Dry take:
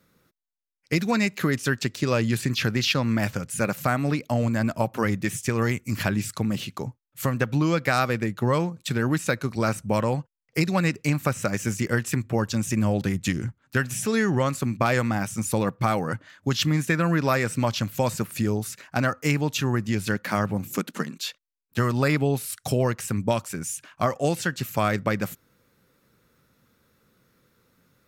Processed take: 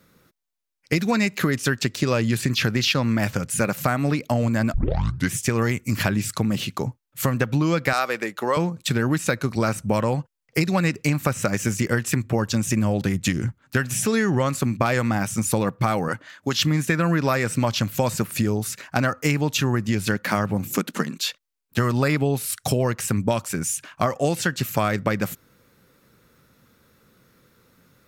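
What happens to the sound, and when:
0:04.74: tape start 0.60 s
0:07.93–0:08.57: high-pass filter 450 Hz
0:16.08–0:16.57: high-pass filter 310 Hz 6 dB per octave
whole clip: downward compressor 2.5 to 1, threshold −25 dBFS; level +6 dB

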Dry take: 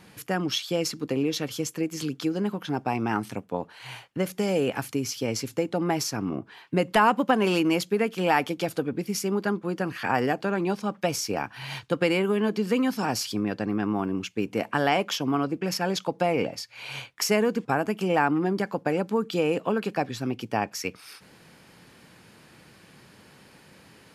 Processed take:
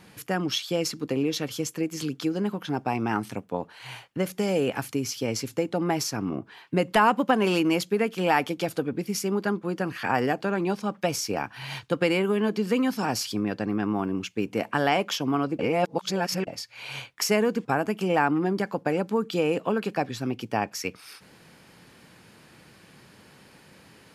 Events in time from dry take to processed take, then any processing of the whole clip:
0:15.59–0:16.47: reverse

